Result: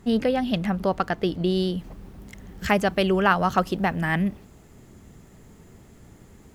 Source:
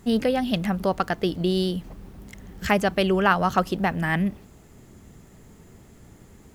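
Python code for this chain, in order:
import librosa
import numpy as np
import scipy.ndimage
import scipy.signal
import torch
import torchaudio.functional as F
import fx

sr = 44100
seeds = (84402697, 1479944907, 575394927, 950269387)

y = fx.high_shelf(x, sr, hz=6300.0, db=fx.steps((0.0, -8.5), (1.78, -2.0)))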